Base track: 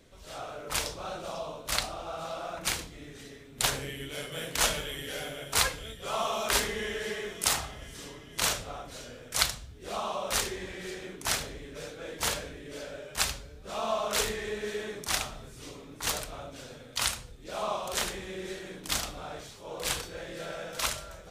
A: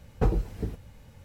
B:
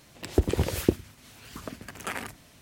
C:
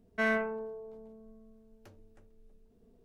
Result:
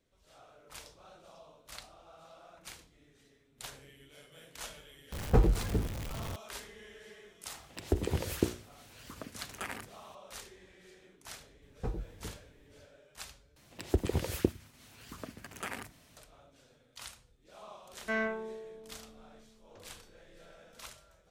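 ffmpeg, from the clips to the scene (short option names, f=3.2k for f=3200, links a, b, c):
-filter_complex "[1:a]asplit=2[a][b];[2:a]asplit=2[c][d];[0:a]volume=-18dB[e];[a]aeval=exprs='val(0)+0.5*0.0188*sgn(val(0))':c=same[f];[c]bandreject=f=60:t=h:w=6,bandreject=f=120:t=h:w=6,bandreject=f=180:t=h:w=6,bandreject=f=240:t=h:w=6,bandreject=f=300:t=h:w=6,bandreject=f=360:t=h:w=6,bandreject=f=420:t=h:w=6,bandreject=f=480:t=h:w=6,bandreject=f=540:t=h:w=6[g];[3:a]aresample=16000,aresample=44100[h];[e]asplit=2[i][j];[i]atrim=end=13.564[k];[d]atrim=end=2.61,asetpts=PTS-STARTPTS,volume=-6dB[l];[j]atrim=start=16.166[m];[f]atrim=end=1.24,asetpts=PTS-STARTPTS,volume=-0.5dB,afade=t=in:d=0.004:c=hsin,afade=t=out:st=1.236:d=0.004:c=hsin,adelay=5120[n];[g]atrim=end=2.61,asetpts=PTS-STARTPTS,volume=-6dB,afade=t=in:d=0.004:c=hsin,afade=t=out:st=2.606:d=0.004:c=hsin,adelay=332514S[o];[b]atrim=end=1.24,asetpts=PTS-STARTPTS,volume=-12.5dB,afade=t=in:d=0.004:c=hsin,afade=t=out:st=1.236:d=0.004:c=hsin,adelay=512442S[p];[h]atrim=end=3.04,asetpts=PTS-STARTPTS,volume=-3.5dB,afade=t=in:d=0.004:c=hsin,afade=t=out:st=3.036:d=0.004:c=hsin,adelay=17900[q];[k][l]acrossfade=d=0.004:c1=hsin:c2=hsin[r];[r][m]acrossfade=d=0.004:c1=hsin:c2=hsin[s];[s][n][o][p][q]amix=inputs=5:normalize=0"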